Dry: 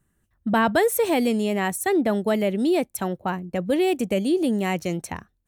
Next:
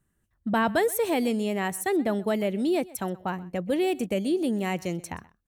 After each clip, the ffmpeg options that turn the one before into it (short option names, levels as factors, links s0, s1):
-af "aecho=1:1:128:0.0841,volume=0.631"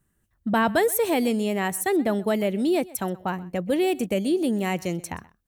-af "highshelf=f=11000:g=5,volume=1.33"